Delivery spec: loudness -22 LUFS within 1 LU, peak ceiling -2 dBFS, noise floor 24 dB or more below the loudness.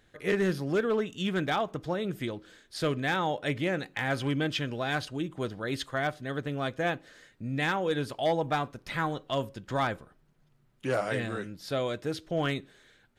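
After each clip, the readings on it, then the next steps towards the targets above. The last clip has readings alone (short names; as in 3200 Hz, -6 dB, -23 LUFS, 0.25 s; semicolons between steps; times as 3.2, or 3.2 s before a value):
clipped 0.4%; flat tops at -20.0 dBFS; loudness -31.0 LUFS; peak -20.0 dBFS; loudness target -22.0 LUFS
-> clip repair -20 dBFS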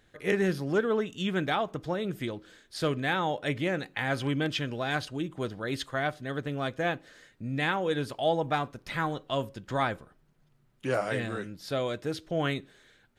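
clipped 0.0%; loudness -31.0 LUFS; peak -12.5 dBFS; loudness target -22.0 LUFS
-> gain +9 dB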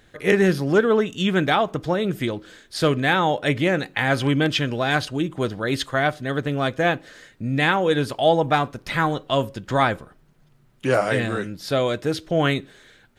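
loudness -22.0 LUFS; peak -3.5 dBFS; noise floor -57 dBFS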